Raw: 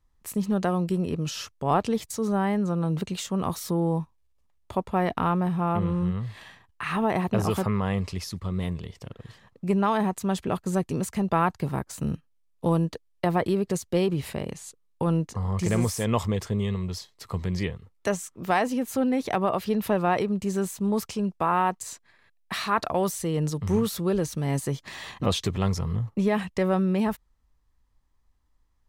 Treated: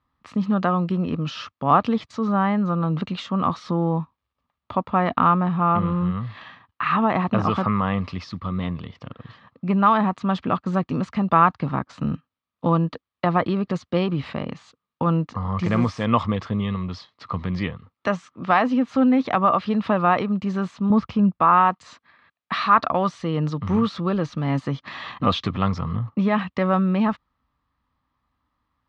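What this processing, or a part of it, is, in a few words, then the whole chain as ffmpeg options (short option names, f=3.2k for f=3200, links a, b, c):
guitar cabinet: -filter_complex "[0:a]asettb=1/sr,asplit=3[a][b][c];[a]atrim=end=20.904[d];[b]atrim=start=20.9:end=21.4,asetpts=PTS-STARTPTS,afade=t=in:d=0.004:c=qsin,afade=t=out:st=0.496:d=0.004:c=qsin,aemphasis=mode=reproduction:type=bsi[e];[c]atrim=start=21.396[f];[d][e]acrossfade=d=0.004:c1=hsin:c2=qsin[g];[g][f]acrossfade=d=0.004:c1=qsin:c2=hsin,highpass=100,equalizer=f=260:t=q:w=4:g=5,equalizer=f=400:t=q:w=4:g=-8,equalizer=f=1.2k:t=q:w=4:g=10,lowpass=f=4.1k:w=0.5412,lowpass=f=4.1k:w=1.3066,volume=3.5dB"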